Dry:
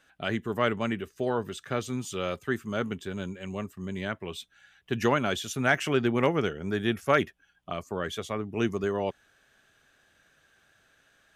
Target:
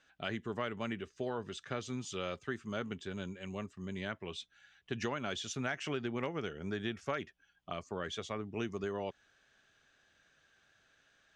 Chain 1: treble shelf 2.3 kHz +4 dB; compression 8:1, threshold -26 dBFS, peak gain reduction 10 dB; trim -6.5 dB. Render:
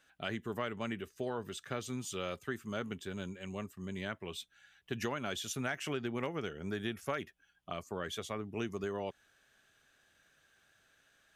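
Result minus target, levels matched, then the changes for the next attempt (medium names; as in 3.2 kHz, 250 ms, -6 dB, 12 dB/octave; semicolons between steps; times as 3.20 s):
8 kHz band +3.0 dB
add after compression: low-pass 6.8 kHz 24 dB/octave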